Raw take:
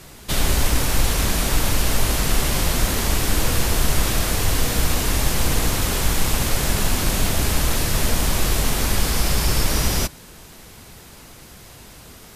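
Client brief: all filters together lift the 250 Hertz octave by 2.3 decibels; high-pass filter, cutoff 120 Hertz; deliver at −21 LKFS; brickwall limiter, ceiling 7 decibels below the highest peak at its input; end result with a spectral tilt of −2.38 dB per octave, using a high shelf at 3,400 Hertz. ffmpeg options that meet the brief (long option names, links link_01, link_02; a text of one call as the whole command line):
ffmpeg -i in.wav -af "highpass=120,equalizer=frequency=250:width_type=o:gain=3.5,highshelf=frequency=3400:gain=4,volume=2dB,alimiter=limit=-13dB:level=0:latency=1" out.wav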